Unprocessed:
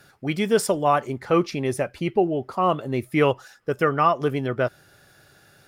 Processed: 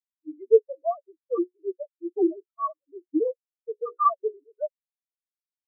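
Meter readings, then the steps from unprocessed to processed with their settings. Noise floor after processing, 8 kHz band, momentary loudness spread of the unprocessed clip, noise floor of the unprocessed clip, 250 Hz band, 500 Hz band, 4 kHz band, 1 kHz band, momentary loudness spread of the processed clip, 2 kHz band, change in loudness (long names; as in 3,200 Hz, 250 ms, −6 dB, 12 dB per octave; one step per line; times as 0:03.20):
below −85 dBFS, below −40 dB, 6 LU, −56 dBFS, −5.5 dB, −3.0 dB, below −40 dB, −5.5 dB, 16 LU, below −40 dB, −4.5 dB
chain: three sine waves on the formant tracks
mains-hum notches 60/120/180/240/300/360/420/480/540 Hz
leveller curve on the samples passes 2
in parallel at −4 dB: sine wavefolder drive 4 dB, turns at −5.5 dBFS
on the sum: every bin expanded away from the loudest bin 4 to 1
level −4.5 dB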